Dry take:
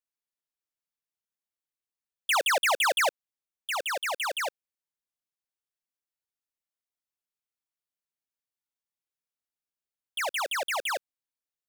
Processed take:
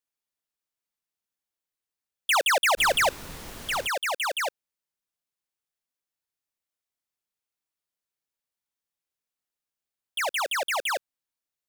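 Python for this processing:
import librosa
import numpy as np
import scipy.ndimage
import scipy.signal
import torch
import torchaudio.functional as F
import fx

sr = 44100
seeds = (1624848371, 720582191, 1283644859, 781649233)

y = fx.dmg_noise_colour(x, sr, seeds[0], colour='pink', level_db=-43.0, at=(2.77, 3.86), fade=0.02)
y = F.gain(torch.from_numpy(y), 2.5).numpy()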